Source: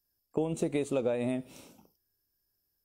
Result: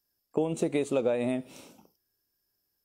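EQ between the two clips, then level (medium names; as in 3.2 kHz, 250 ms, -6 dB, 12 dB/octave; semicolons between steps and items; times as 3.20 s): bass shelf 100 Hz -11 dB; treble shelf 11 kHz -5.5 dB; +3.5 dB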